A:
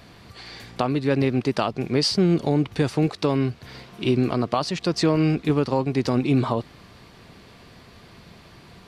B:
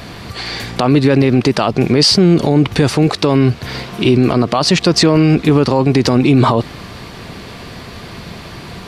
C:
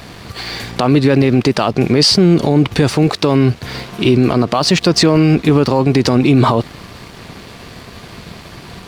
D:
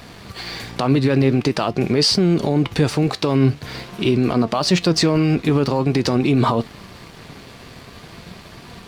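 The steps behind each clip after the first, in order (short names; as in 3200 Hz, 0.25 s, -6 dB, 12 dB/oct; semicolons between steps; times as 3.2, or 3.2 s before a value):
maximiser +17.5 dB; gain -1 dB
crossover distortion -39 dBFS
flange 0.46 Hz, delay 4 ms, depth 4.1 ms, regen +80%; gain -1 dB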